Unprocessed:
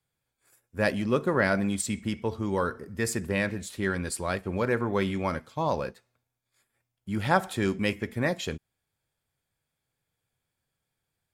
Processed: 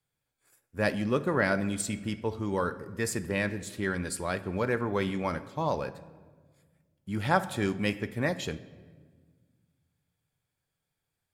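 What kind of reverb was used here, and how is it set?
rectangular room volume 1,700 cubic metres, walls mixed, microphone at 0.38 metres
level −2 dB

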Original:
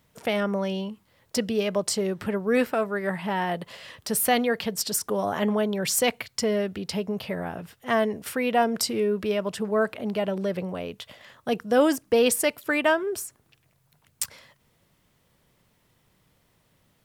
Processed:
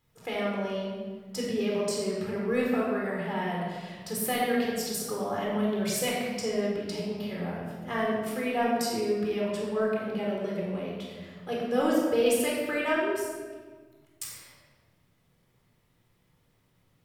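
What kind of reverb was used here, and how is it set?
rectangular room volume 1,500 cubic metres, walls mixed, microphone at 4 metres
level −11.5 dB

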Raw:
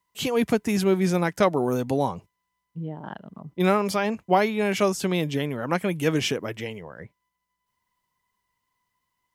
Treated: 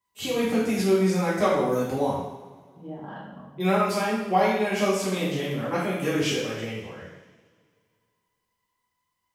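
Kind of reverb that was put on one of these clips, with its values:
coupled-rooms reverb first 0.86 s, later 2.3 s, from −17 dB, DRR −9 dB
level −10 dB

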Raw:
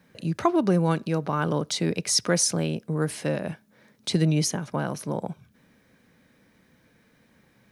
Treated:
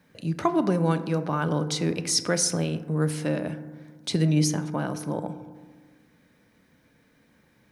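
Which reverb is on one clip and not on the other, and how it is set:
feedback delay network reverb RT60 1.5 s, low-frequency decay 1.25×, high-frequency decay 0.3×, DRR 9.5 dB
level −1.5 dB

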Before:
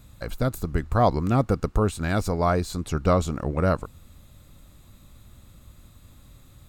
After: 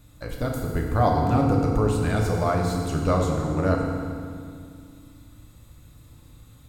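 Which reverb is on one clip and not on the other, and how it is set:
feedback delay network reverb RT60 2.2 s, low-frequency decay 1.45×, high-frequency decay 0.85×, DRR −1 dB
level −3.5 dB

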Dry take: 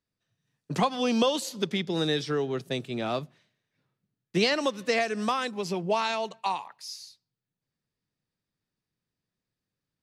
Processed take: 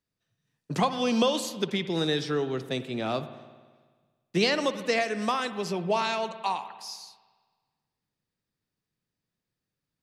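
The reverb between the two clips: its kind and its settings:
spring reverb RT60 1.5 s, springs 54 ms, chirp 70 ms, DRR 11.5 dB

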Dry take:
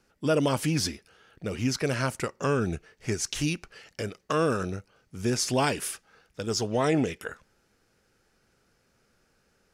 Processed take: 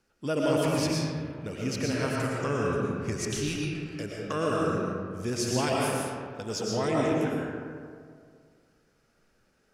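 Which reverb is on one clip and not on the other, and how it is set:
comb and all-pass reverb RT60 2.1 s, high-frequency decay 0.45×, pre-delay 75 ms, DRR −3.5 dB
level −5.5 dB

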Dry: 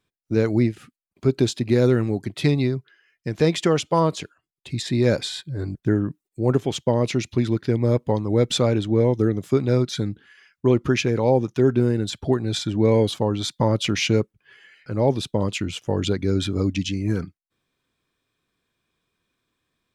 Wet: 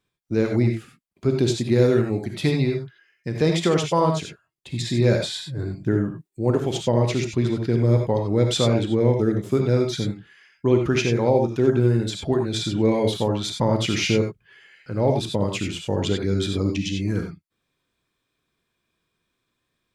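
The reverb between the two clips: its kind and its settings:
reverb whose tail is shaped and stops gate 110 ms rising, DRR 3 dB
level −1.5 dB

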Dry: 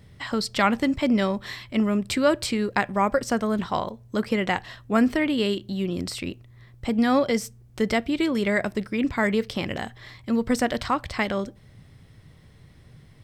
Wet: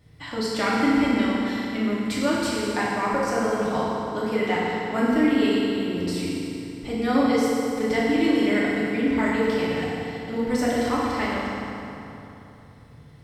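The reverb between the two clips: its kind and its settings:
feedback delay network reverb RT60 3.2 s, high-frequency decay 0.7×, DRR −8 dB
level −8 dB

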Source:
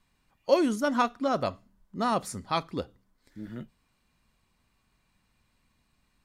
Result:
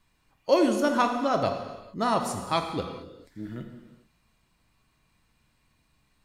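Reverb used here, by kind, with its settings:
reverb whose tail is shaped and stops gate 470 ms falling, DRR 4.5 dB
level +1.5 dB

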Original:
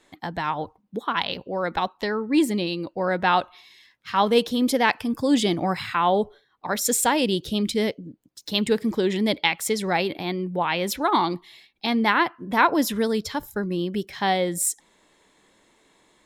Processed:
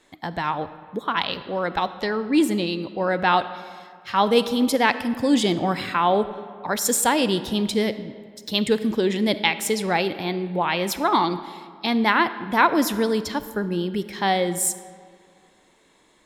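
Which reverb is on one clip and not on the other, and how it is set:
comb and all-pass reverb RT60 2.1 s, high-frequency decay 0.6×, pre-delay 5 ms, DRR 12.5 dB
level +1 dB

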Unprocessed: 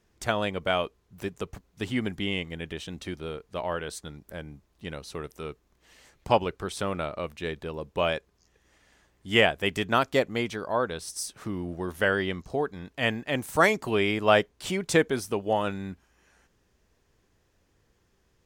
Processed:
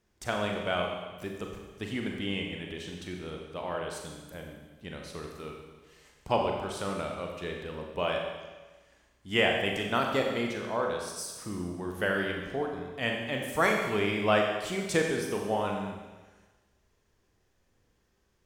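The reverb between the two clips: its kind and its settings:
four-comb reverb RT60 1.3 s, combs from 30 ms, DRR 1 dB
level −5.5 dB

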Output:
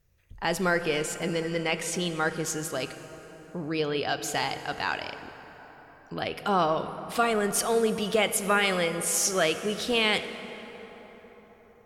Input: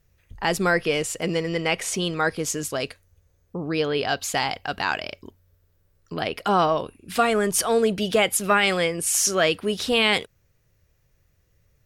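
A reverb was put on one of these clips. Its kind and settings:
dense smooth reverb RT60 4.8 s, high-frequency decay 0.5×, DRR 9.5 dB
level −4.5 dB

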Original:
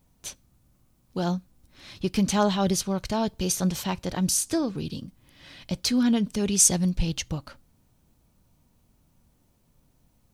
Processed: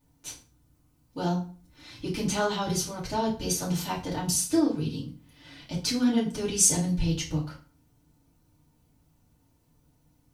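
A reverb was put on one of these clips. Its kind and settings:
feedback delay network reverb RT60 0.4 s, low-frequency decay 1.2×, high-frequency decay 0.8×, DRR −7 dB
level −9 dB

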